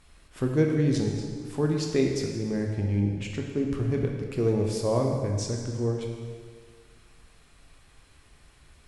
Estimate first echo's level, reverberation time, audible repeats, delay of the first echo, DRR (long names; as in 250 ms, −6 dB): no echo audible, 1.8 s, no echo audible, no echo audible, 1.0 dB